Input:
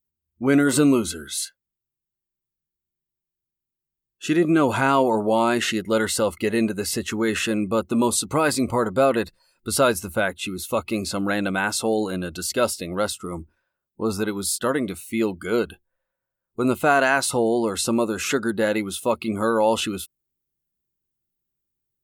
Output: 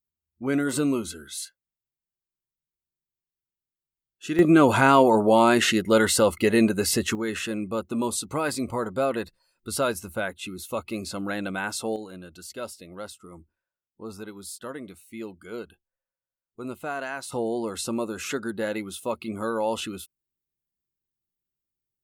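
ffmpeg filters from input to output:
-af "asetnsamples=n=441:p=0,asendcmd='4.39 volume volume 2dB;7.15 volume volume -6.5dB;11.96 volume volume -14dB;17.32 volume volume -7dB',volume=-7dB"

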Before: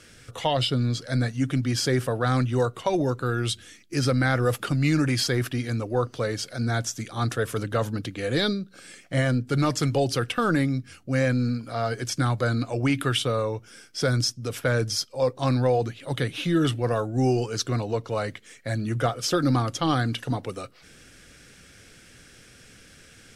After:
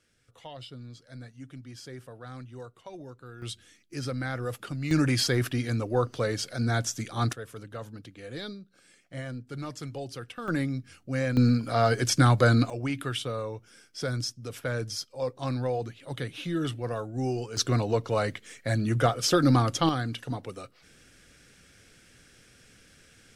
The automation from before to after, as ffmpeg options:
-af "asetnsamples=n=441:p=0,asendcmd='3.42 volume volume -10dB;4.91 volume volume -1dB;7.33 volume volume -14dB;10.48 volume volume -5.5dB;11.37 volume volume 4dB;12.7 volume volume -7.5dB;17.57 volume volume 1dB;19.89 volume volume -6dB',volume=-19.5dB"

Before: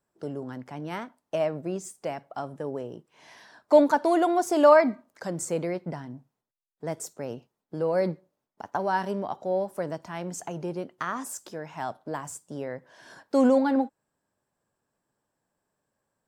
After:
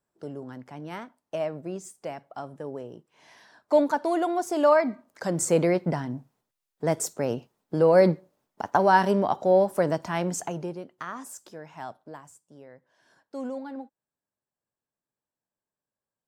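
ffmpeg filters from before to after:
-af "volume=7.5dB,afade=t=in:st=4.86:d=0.74:silence=0.298538,afade=t=out:st=10.18:d=0.61:silence=0.237137,afade=t=out:st=11.84:d=0.49:silence=0.354813"

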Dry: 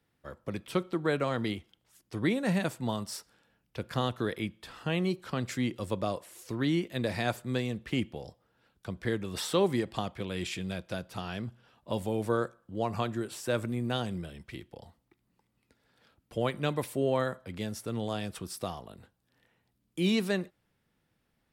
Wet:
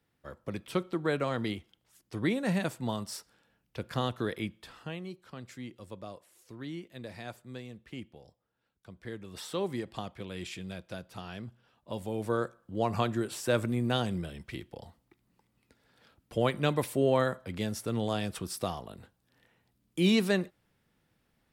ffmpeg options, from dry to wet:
-af "volume=13.5dB,afade=t=out:st=4.55:d=0.45:silence=0.281838,afade=t=in:st=8.9:d=1.05:silence=0.446684,afade=t=in:st=11.98:d=0.97:silence=0.421697"

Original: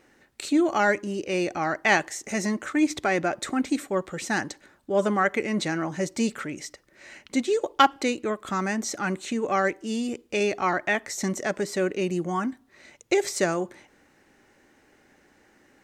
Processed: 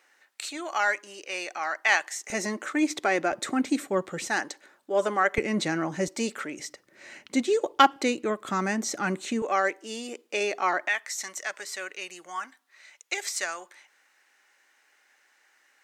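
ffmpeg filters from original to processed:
-af "asetnsamples=n=441:p=0,asendcmd='2.3 highpass f 300;3.32 highpass f 140;4.27 highpass f 400;5.38 highpass f 140;6.08 highpass f 300;6.59 highpass f 140;9.42 highpass f 460;10.88 highpass f 1200',highpass=910"

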